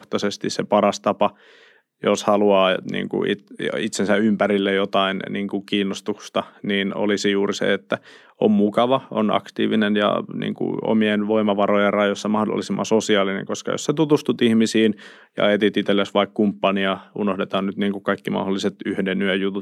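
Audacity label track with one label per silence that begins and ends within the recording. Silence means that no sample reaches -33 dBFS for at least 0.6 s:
1.290000	2.040000	silence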